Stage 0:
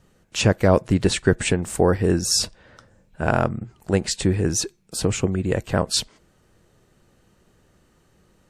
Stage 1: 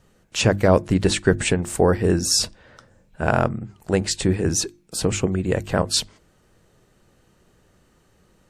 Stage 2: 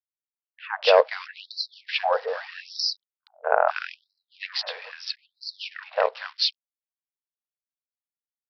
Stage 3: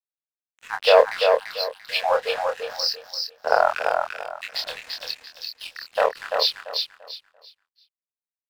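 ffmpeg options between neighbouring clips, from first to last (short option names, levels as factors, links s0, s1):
-af "bandreject=f=50:t=h:w=6,bandreject=f=100:t=h:w=6,bandreject=f=150:t=h:w=6,bandreject=f=200:t=h:w=6,bandreject=f=250:t=h:w=6,bandreject=f=300:t=h:w=6,bandreject=f=350:t=h:w=6,volume=1.12"
-filter_complex "[0:a]aresample=11025,aeval=exprs='sgn(val(0))*max(abs(val(0))-0.0126,0)':c=same,aresample=44100,acrossover=split=240|1700[s0][s1][s2];[s1]adelay=240[s3];[s2]adelay=480[s4];[s0][s3][s4]amix=inputs=3:normalize=0,afftfilt=real='re*gte(b*sr/1024,420*pow(4000/420,0.5+0.5*sin(2*PI*0.78*pts/sr)))':imag='im*gte(b*sr/1024,420*pow(4000/420,0.5+0.5*sin(2*PI*0.78*pts/sr)))':win_size=1024:overlap=0.75,volume=1.33"
-filter_complex "[0:a]aeval=exprs='sgn(val(0))*max(abs(val(0))-0.01,0)':c=same,asplit=2[s0][s1];[s1]adelay=26,volume=0.562[s2];[s0][s2]amix=inputs=2:normalize=0,asplit=2[s3][s4];[s4]aecho=0:1:341|682|1023|1364:0.596|0.161|0.0434|0.0117[s5];[s3][s5]amix=inputs=2:normalize=0,volume=1.19"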